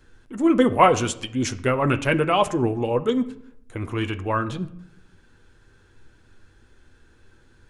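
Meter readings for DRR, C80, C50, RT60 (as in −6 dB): 7.5 dB, 19.0 dB, 16.5 dB, 0.75 s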